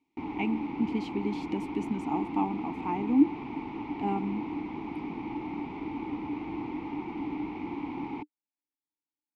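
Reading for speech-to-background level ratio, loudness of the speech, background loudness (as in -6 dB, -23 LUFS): 5.0 dB, -31.5 LUFS, -36.5 LUFS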